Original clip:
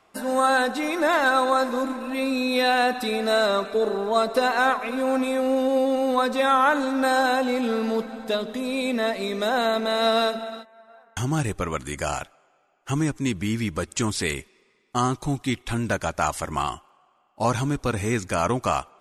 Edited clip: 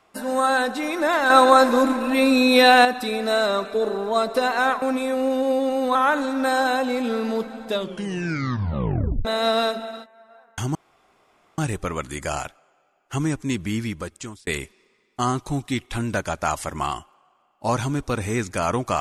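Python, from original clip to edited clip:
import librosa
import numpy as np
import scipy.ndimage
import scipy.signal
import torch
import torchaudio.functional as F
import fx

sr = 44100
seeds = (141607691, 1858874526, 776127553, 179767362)

y = fx.edit(x, sr, fx.clip_gain(start_s=1.3, length_s=1.55, db=7.5),
    fx.cut(start_s=4.82, length_s=0.26),
    fx.cut(start_s=6.21, length_s=0.33),
    fx.tape_stop(start_s=8.3, length_s=1.54),
    fx.insert_room_tone(at_s=11.34, length_s=0.83),
    fx.fade_out_span(start_s=13.52, length_s=0.71), tone=tone)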